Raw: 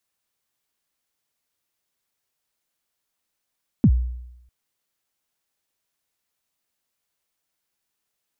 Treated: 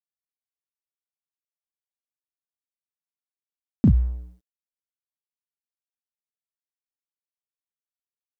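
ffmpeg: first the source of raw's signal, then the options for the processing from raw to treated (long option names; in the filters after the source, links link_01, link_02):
-f lavfi -i "aevalsrc='0.355*pow(10,-3*t/0.87)*sin(2*PI*(280*0.065/log(61/280)*(exp(log(61/280)*min(t,0.065)/0.065)-1)+61*max(t-0.065,0)))':duration=0.65:sample_rate=44100"
-filter_complex "[0:a]asplit=2[link_01][link_02];[link_02]adelay=36,volume=-4dB[link_03];[link_01][link_03]amix=inputs=2:normalize=0,aeval=exprs='sgn(val(0))*max(abs(val(0))-0.00562,0)':channel_layout=same"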